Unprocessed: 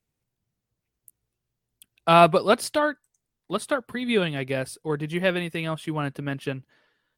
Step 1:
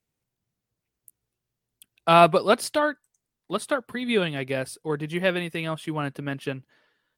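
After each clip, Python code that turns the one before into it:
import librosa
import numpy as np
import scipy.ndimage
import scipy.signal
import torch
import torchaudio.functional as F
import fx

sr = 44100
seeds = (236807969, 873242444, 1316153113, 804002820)

y = fx.low_shelf(x, sr, hz=98.0, db=-6.0)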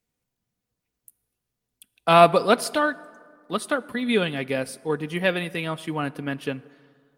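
y = x + 0.3 * np.pad(x, (int(4.1 * sr / 1000.0), 0))[:len(x)]
y = fx.rev_plate(y, sr, seeds[0], rt60_s=2.1, hf_ratio=0.5, predelay_ms=0, drr_db=19.0)
y = y * librosa.db_to_amplitude(1.0)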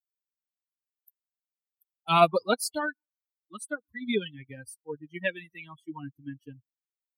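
y = fx.bin_expand(x, sr, power=3.0)
y = fx.high_shelf(y, sr, hz=4700.0, db=6.0)
y = y * librosa.db_to_amplitude(-2.5)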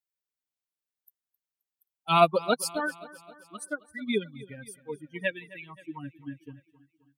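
y = fx.spec_erase(x, sr, start_s=4.23, length_s=0.25, low_hz=1400.0, high_hz=3400.0)
y = fx.echo_feedback(y, sr, ms=264, feedback_pct=55, wet_db=-19)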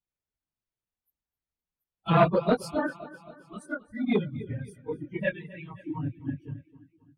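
y = fx.phase_scramble(x, sr, seeds[1], window_ms=50)
y = fx.riaa(y, sr, side='playback')
y = fx.transformer_sat(y, sr, knee_hz=640.0)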